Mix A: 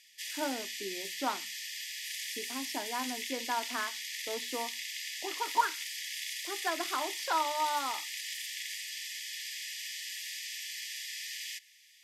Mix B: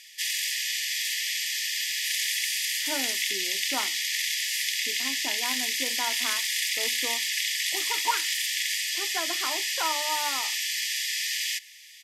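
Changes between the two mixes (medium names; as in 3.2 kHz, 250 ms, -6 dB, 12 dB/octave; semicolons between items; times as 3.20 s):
speech: entry +2.50 s; background +11.5 dB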